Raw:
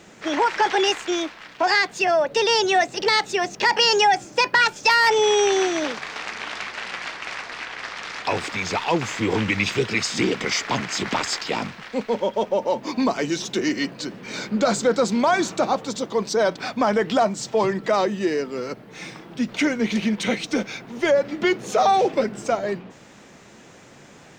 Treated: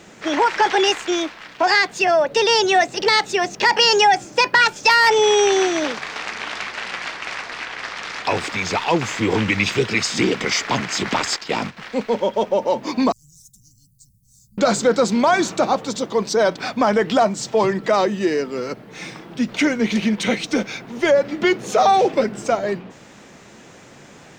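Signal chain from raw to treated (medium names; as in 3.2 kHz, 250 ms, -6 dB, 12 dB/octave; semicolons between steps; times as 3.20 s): 11.36–11.77 s: gate -30 dBFS, range -9 dB; 13.12–14.58 s: inverse Chebyshev band-stop 420–2200 Hz, stop band 80 dB; trim +3 dB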